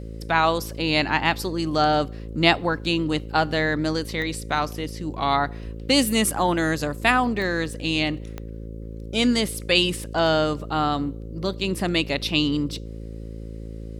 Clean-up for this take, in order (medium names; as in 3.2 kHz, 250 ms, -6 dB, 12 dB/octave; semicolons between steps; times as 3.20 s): de-click; de-hum 55 Hz, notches 10